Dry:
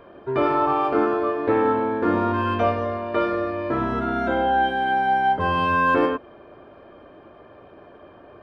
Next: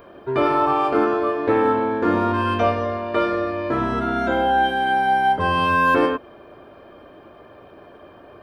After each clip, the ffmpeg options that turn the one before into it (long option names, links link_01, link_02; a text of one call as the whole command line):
ffmpeg -i in.wav -af "aemphasis=mode=production:type=50kf,volume=1.5dB" out.wav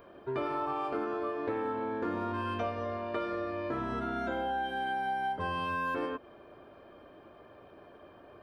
ffmpeg -i in.wav -af "acompressor=threshold=-22dB:ratio=4,volume=-9dB" out.wav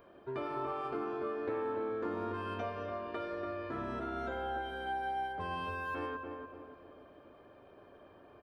ffmpeg -i in.wav -filter_complex "[0:a]asplit=2[link_01][link_02];[link_02]adelay=288,lowpass=frequency=1300:poles=1,volume=-4dB,asplit=2[link_03][link_04];[link_04]adelay=288,lowpass=frequency=1300:poles=1,volume=0.47,asplit=2[link_05][link_06];[link_06]adelay=288,lowpass=frequency=1300:poles=1,volume=0.47,asplit=2[link_07][link_08];[link_08]adelay=288,lowpass=frequency=1300:poles=1,volume=0.47,asplit=2[link_09][link_10];[link_10]adelay=288,lowpass=frequency=1300:poles=1,volume=0.47,asplit=2[link_11][link_12];[link_12]adelay=288,lowpass=frequency=1300:poles=1,volume=0.47[link_13];[link_01][link_03][link_05][link_07][link_09][link_11][link_13]amix=inputs=7:normalize=0,volume=-5dB" out.wav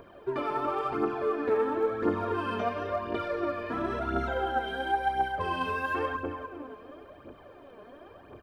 ffmpeg -i in.wav -af "aphaser=in_gain=1:out_gain=1:delay=4.9:decay=0.59:speed=0.96:type=triangular,volume=6dB" out.wav